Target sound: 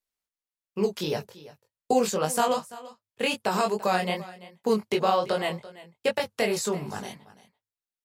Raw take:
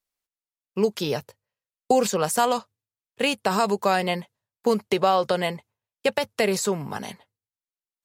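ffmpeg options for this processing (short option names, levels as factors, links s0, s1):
-filter_complex "[0:a]flanger=delay=18.5:depth=5.1:speed=2.6,asplit=2[s0][s1];[s1]aecho=0:1:338:0.126[s2];[s0][s2]amix=inputs=2:normalize=0"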